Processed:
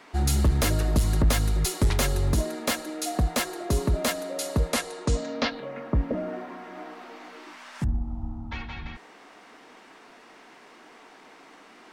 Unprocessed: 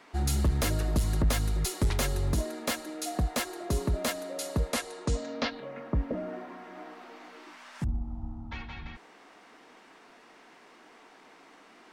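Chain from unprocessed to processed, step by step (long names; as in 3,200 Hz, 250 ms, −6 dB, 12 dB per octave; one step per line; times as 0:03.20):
hum removal 169.1 Hz, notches 11
level +4.5 dB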